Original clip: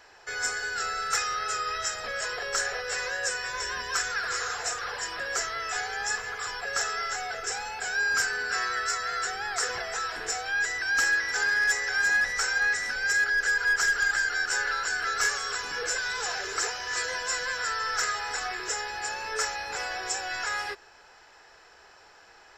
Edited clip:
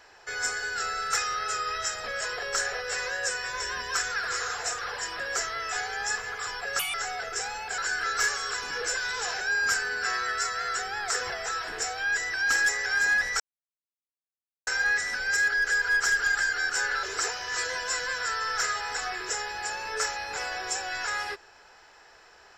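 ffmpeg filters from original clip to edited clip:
ffmpeg -i in.wav -filter_complex "[0:a]asplit=8[link_01][link_02][link_03][link_04][link_05][link_06][link_07][link_08];[link_01]atrim=end=6.794[link_09];[link_02]atrim=start=6.79:end=7.05,asetpts=PTS-STARTPTS,asetrate=76734,aresample=44100[link_10];[link_03]atrim=start=7.046:end=7.892[link_11];[link_04]atrim=start=14.788:end=16.422[link_12];[link_05]atrim=start=7.888:end=11.142[link_13];[link_06]atrim=start=11.688:end=12.43,asetpts=PTS-STARTPTS,afade=type=out:start_time=0.738:duration=0.004:curve=hsin,apad=pad_dur=1.27[link_14];[link_07]atrim=start=12.43:end=14.792,asetpts=PTS-STARTPTS,afade=type=in:duration=0.004:curve=hsin[link_15];[link_08]atrim=start=16.418[link_16];[link_09][link_10]acrossfade=duration=0.004:curve1=hsin:curve2=hsin[link_17];[link_17][link_11]acrossfade=duration=0.004:curve1=hsin:curve2=hsin[link_18];[link_18][link_12]acrossfade=duration=0.004:curve1=hsin:curve2=hsin[link_19];[link_19][link_13]acrossfade=duration=0.004:curve1=hsin:curve2=hsin[link_20];[link_14][link_15]concat=n=2:v=0:a=1[link_21];[link_20][link_21]acrossfade=duration=0.004:curve1=hsin:curve2=hsin[link_22];[link_22][link_16]acrossfade=duration=0.004:curve1=hsin:curve2=hsin" out.wav

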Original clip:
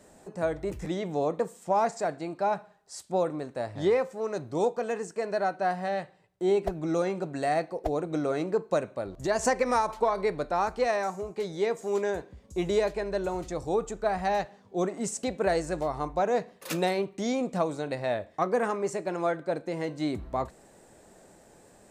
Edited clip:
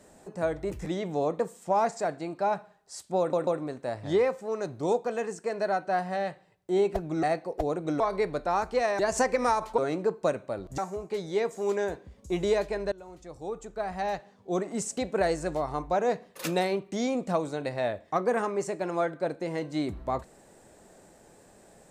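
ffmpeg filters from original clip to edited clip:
ffmpeg -i in.wav -filter_complex "[0:a]asplit=9[link_01][link_02][link_03][link_04][link_05][link_06][link_07][link_08][link_09];[link_01]atrim=end=3.332[link_10];[link_02]atrim=start=3.188:end=3.332[link_11];[link_03]atrim=start=3.188:end=6.952[link_12];[link_04]atrim=start=7.488:end=8.262[link_13];[link_05]atrim=start=10.048:end=11.042[link_14];[link_06]atrim=start=9.258:end=10.052[link_15];[link_07]atrim=start=8.258:end=9.262[link_16];[link_08]atrim=start=11.038:end=13.18,asetpts=PTS-STARTPTS,afade=type=out:start_time=2.138:duration=0.004:curve=hsin:silence=0.112202[link_17];[link_09]atrim=start=13.18,asetpts=PTS-STARTPTS,afade=type=in:duration=1.81:silence=0.112202[link_18];[link_10][link_11]acrossfade=duration=0.004:curve1=hsin:curve2=hsin[link_19];[link_19][link_12]acrossfade=duration=0.004:curve1=hsin:curve2=hsin[link_20];[link_20][link_13]acrossfade=duration=0.004:curve1=hsin:curve2=hsin[link_21];[link_21][link_14]acrossfade=duration=0.004:curve1=hsin:curve2=hsin[link_22];[link_22][link_15]acrossfade=duration=0.004:curve1=hsin:curve2=hsin[link_23];[link_23][link_16]acrossfade=duration=0.004:curve1=hsin:curve2=hsin[link_24];[link_17][link_18]concat=n=2:v=0:a=1[link_25];[link_24][link_25]acrossfade=duration=0.004:curve1=hsin:curve2=hsin" out.wav

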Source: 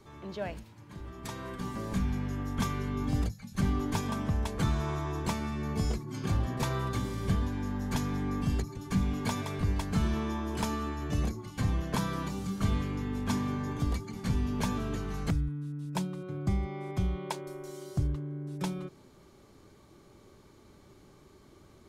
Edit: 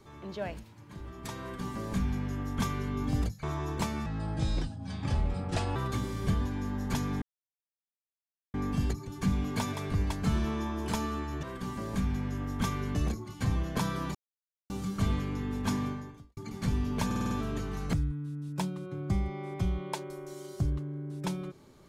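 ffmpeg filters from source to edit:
ffmpeg -i in.wav -filter_complex "[0:a]asplit=14[link_01][link_02][link_03][link_04][link_05][link_06][link_07][link_08][link_09][link_10][link_11][link_12][link_13][link_14];[link_01]atrim=end=3.432[link_15];[link_02]atrim=start=4.898:end=5.534[link_16];[link_03]atrim=start=5.53:end=6.77,asetpts=PTS-STARTPTS,asetrate=32193,aresample=44100[link_17];[link_04]atrim=start=6.766:end=8.23,asetpts=PTS-STARTPTS,afade=type=out:start_time=1.46:duration=0.004:curve=hsin,apad=pad_dur=1.32[link_18];[link_05]atrim=start=8.23:end=11.122,asetpts=PTS-STARTPTS,afade=type=in:duration=0.004:curve=hsin[link_19];[link_06]atrim=start=1.408:end=2.932[link_20];[link_07]atrim=start=11.118:end=12.32,asetpts=PTS-STARTPTS,afade=type=out:start_time=1.198:duration=0.004:curve=hsin,apad=pad_dur=0.55[link_21];[link_08]atrim=start=12.32:end=13.99,asetpts=PTS-STARTPTS,afade=type=in:duration=0.004:curve=hsin,afade=type=out:start_time=1.15:duration=0.52:curve=qua[link_22];[link_09]atrim=start=13.99:end=14.732,asetpts=PTS-STARTPTS,afade=type=in:duration=0.004:curve=hsin[link_23];[link_10]atrim=start=14.678:end=14.732[link_24];[link_11]atrim=start=14.678:end=14.732[link_25];[link_12]atrim=start=14.678:end=14.732[link_26];[link_13]atrim=start=14.678:end=14.732[link_27];[link_14]atrim=start=14.678[link_28];[link_15][link_16]acrossfade=duration=0.004:curve1=hsin:curve2=hsin[link_29];[link_29][link_17]acrossfade=duration=0.004:curve1=hsin:curve2=hsin[link_30];[link_18][link_19]concat=n=2:v=0:a=1[link_31];[link_30][link_31]acrossfade=duration=0.004:curve1=hsin:curve2=hsin[link_32];[link_32][link_20]acrossfade=duration=0.004:curve1=hsin:curve2=hsin[link_33];[link_21][link_22][link_23]concat=n=3:v=0:a=1[link_34];[link_33][link_34]acrossfade=duration=0.004:curve1=hsin:curve2=hsin[link_35];[link_35][link_24]acrossfade=duration=0.004:curve1=hsin:curve2=hsin[link_36];[link_36][link_25]acrossfade=duration=0.004:curve1=hsin:curve2=hsin[link_37];[link_37][link_26]acrossfade=duration=0.004:curve1=hsin:curve2=hsin[link_38];[link_38][link_27]acrossfade=duration=0.004:curve1=hsin:curve2=hsin[link_39];[link_39][link_28]acrossfade=duration=0.004:curve1=hsin:curve2=hsin" out.wav

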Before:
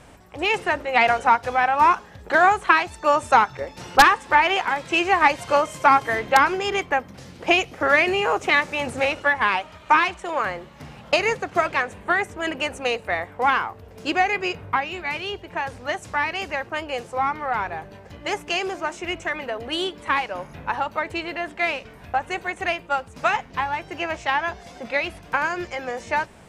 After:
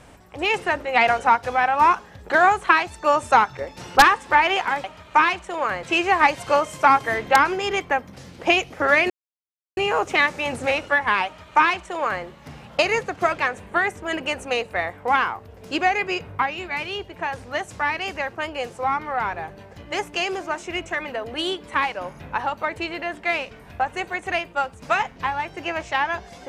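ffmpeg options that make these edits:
ffmpeg -i in.wav -filter_complex "[0:a]asplit=4[link_01][link_02][link_03][link_04];[link_01]atrim=end=4.842[link_05];[link_02]atrim=start=9.588:end=10.582[link_06];[link_03]atrim=start=4.838:end=8.11,asetpts=PTS-STARTPTS,afade=type=out:start_time=3.268:duration=0.004:curve=hsin,apad=pad_dur=0.67[link_07];[link_04]atrim=start=8.11,asetpts=PTS-STARTPTS,afade=type=in:duration=0.004:curve=hsin[link_08];[link_05][link_06]acrossfade=duration=0.004:curve1=hsin:curve2=hsin[link_09];[link_07][link_08]concat=n=2:v=0:a=1[link_10];[link_09][link_10]acrossfade=duration=0.004:curve1=hsin:curve2=hsin" out.wav

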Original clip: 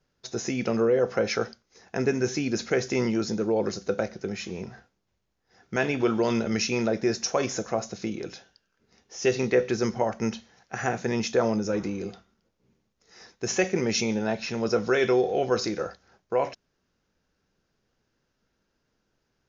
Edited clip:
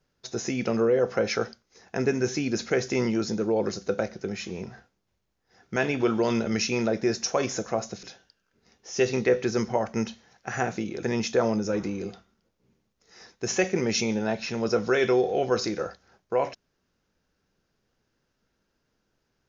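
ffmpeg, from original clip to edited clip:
ffmpeg -i in.wav -filter_complex "[0:a]asplit=4[link_01][link_02][link_03][link_04];[link_01]atrim=end=8.032[link_05];[link_02]atrim=start=8.288:end=11.032[link_06];[link_03]atrim=start=8.028:end=8.292[link_07];[link_04]atrim=start=11.028[link_08];[link_05][link_06]acrossfade=duration=0.004:curve1=hsin:curve2=hsin[link_09];[link_09][link_07]acrossfade=duration=0.004:curve1=hsin:curve2=hsin[link_10];[link_10][link_08]acrossfade=duration=0.004:curve1=hsin:curve2=hsin" out.wav

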